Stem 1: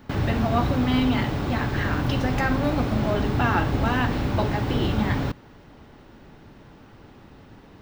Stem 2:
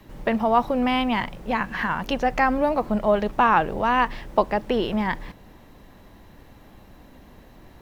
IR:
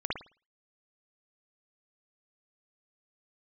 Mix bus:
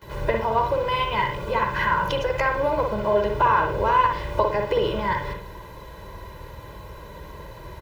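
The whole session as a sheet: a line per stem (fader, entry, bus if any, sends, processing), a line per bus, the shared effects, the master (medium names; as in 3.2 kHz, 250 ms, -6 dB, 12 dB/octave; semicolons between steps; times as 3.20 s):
-14.0 dB, 0.00 s, send -5.5 dB, tone controls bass -5 dB, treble -2 dB
+2.0 dB, 16 ms, send -6.5 dB, compression 2.5:1, threshold -34 dBFS, peak gain reduction 14 dB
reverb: on, pre-delay 53 ms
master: high-pass 41 Hz; peaking EQ 1 kHz +5 dB 0.2 oct; comb 2 ms, depth 99%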